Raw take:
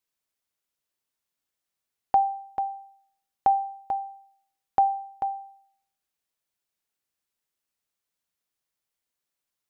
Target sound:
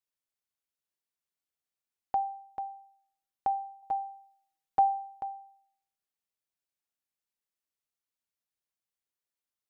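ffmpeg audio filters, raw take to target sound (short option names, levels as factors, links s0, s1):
-filter_complex "[0:a]asettb=1/sr,asplit=3[s0][s1][s2];[s0]atrim=end=3.824[s3];[s1]atrim=start=3.82:end=5.21,asetpts=PTS-STARTPTS,afade=t=in:d=0.004:c=qsin,afade=t=out:st=1.386:d=0.004:c=qsin,aecho=1:1:6.3:0.97,atrim=end_sample=61299[s4];[s2]atrim=start=5.206[s5];[s3][s4]acrossfade=d=0.004:c1=hsin:c2=qsin[s6];[s6][s5]acrossfade=d=0.004:c1=qsin:c2=hsin,volume=0.376"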